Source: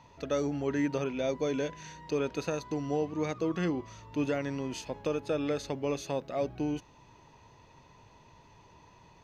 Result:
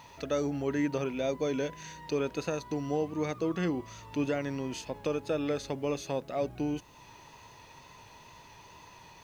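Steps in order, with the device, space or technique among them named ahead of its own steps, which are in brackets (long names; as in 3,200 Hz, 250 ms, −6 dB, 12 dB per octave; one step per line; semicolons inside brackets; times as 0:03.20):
noise-reduction cassette on a plain deck (one half of a high-frequency compander encoder only; tape wow and flutter 23 cents; white noise bed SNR 38 dB)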